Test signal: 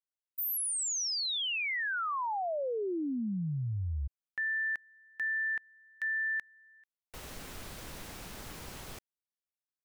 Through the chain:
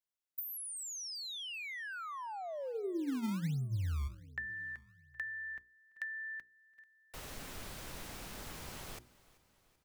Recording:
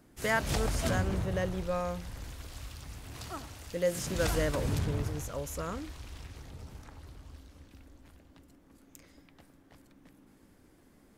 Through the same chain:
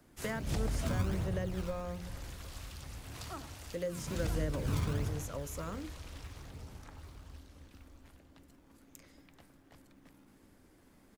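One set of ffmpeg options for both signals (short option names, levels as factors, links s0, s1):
-filter_complex "[0:a]bandreject=f=60:t=h:w=6,bandreject=f=120:t=h:w=6,bandreject=f=180:t=h:w=6,bandreject=f=240:t=h:w=6,bandreject=f=300:t=h:w=6,bandreject=f=360:t=h:w=6,bandreject=f=420:t=h:w=6,bandreject=f=480:t=h:w=6,acrossover=split=380[s0][s1];[s1]acompressor=threshold=0.00631:ratio=4:attack=66:release=320:knee=2.83:detection=peak[s2];[s0][s2]amix=inputs=2:normalize=0,aecho=1:1:385|770|1155|1540:0.0891|0.049|0.027|0.0148,acrossover=split=250[s3][s4];[s3]acrusher=samples=22:mix=1:aa=0.000001:lfo=1:lforange=35.2:lforate=1.3[s5];[s5][s4]amix=inputs=2:normalize=0,volume=0.891"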